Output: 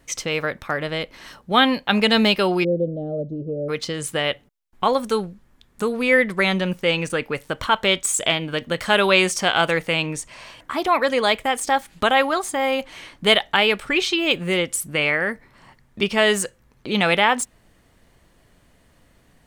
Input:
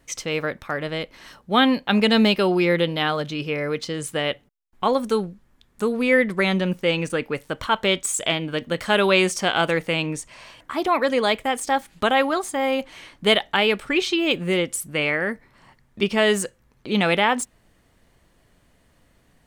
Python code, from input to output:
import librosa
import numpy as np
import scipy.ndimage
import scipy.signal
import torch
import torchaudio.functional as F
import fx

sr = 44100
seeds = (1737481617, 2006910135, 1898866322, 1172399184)

y = fx.ellip_lowpass(x, sr, hz=620.0, order=4, stop_db=40, at=(2.63, 3.68), fade=0.02)
y = fx.dynamic_eq(y, sr, hz=270.0, q=0.74, threshold_db=-31.0, ratio=4.0, max_db=-5)
y = y * librosa.db_to_amplitude(3.0)